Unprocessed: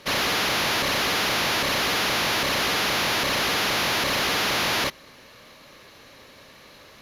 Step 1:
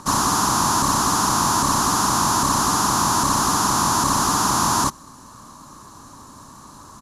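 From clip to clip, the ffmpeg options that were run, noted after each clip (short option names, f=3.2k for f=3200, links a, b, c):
-filter_complex "[0:a]firequalizer=gain_entry='entry(280,0);entry(500,-17);entry(1000,5);entry(2100,-25);entry(7700,10);entry(15000,-15)':delay=0.05:min_phase=1,acrossover=split=2000[a][b];[a]acompressor=mode=upward:threshold=-48dB:ratio=2.5[c];[c][b]amix=inputs=2:normalize=0,volume=9dB"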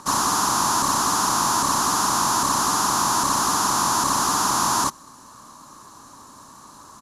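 -af "lowshelf=f=210:g=-10,volume=-1dB"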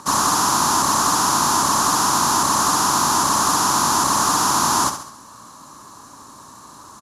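-filter_complex "[0:a]highpass=43,asplit=2[a][b];[b]aecho=0:1:68|136|204|272|340:0.355|0.167|0.0784|0.0368|0.0173[c];[a][c]amix=inputs=2:normalize=0,volume=2.5dB"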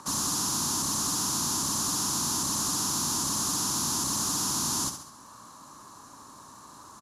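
-filter_complex "[0:a]acrossover=split=340|3000[a][b][c];[b]acompressor=threshold=-38dB:ratio=2.5[d];[a][d][c]amix=inputs=3:normalize=0,volume=-6.5dB"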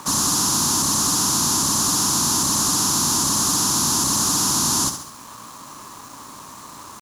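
-af "acrusher=bits=7:mix=0:aa=0.5,volume=9dB"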